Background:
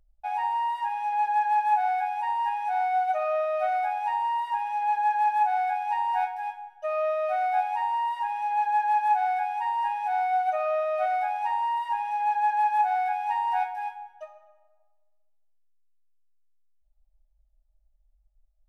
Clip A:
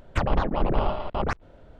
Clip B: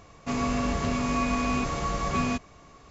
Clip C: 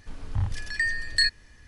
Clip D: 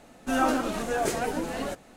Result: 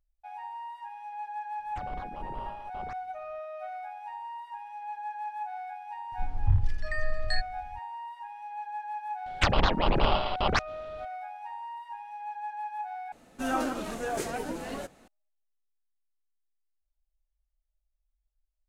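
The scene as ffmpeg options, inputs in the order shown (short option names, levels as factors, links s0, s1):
-filter_complex "[1:a]asplit=2[s0][s1];[0:a]volume=0.224[s2];[3:a]aemphasis=mode=reproduction:type=bsi[s3];[s1]equalizer=f=4100:t=o:w=2.2:g=15[s4];[s2]asplit=2[s5][s6];[s5]atrim=end=13.124[s7];[4:a]atrim=end=1.96,asetpts=PTS-STARTPTS,volume=0.562[s8];[s6]atrim=start=15.076[s9];[s0]atrim=end=1.79,asetpts=PTS-STARTPTS,volume=0.133,afade=t=in:d=0.004:c=hsin,afade=t=out:st=1.786:d=0.004:c=hsin,adelay=1600[s10];[s3]atrim=end=1.67,asetpts=PTS-STARTPTS,volume=0.376,afade=t=in:d=0.004:c=hsin,afade=t=out:st=1.666:d=0.004:c=hsin,adelay=6120[s11];[s4]atrim=end=1.79,asetpts=PTS-STARTPTS,volume=0.794,afade=t=in:d=0.004:c=hsin,afade=t=out:st=1.786:d=0.004:c=hsin,adelay=9260[s12];[s7][s8]acrossfade=d=0.004:c1=hsin:c2=hsin[s13];[s13][s9]acrossfade=d=0.004:c1=hsin:c2=hsin[s14];[s14][s10][s11][s12]amix=inputs=4:normalize=0"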